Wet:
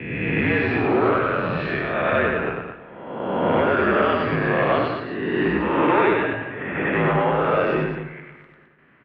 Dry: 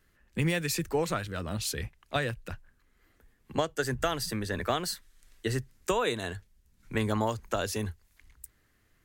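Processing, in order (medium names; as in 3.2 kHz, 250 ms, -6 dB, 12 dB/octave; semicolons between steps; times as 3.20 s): reverse spectral sustain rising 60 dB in 1.20 s; gate with hold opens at -55 dBFS; in parallel at -2 dB: compression, threshold -36 dBFS, peak gain reduction 15 dB; on the sum: saturation -22 dBFS, distortion -12 dB; 6.13–6.93 s: monotone LPC vocoder at 8 kHz 170 Hz; loudspeakers at several distances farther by 33 m -3 dB, 73 m -8 dB; on a send at -15 dB: reverberation RT60 1.5 s, pre-delay 115 ms; on the sum: mistuned SSB -57 Hz 190–2700 Hz; trim +8 dB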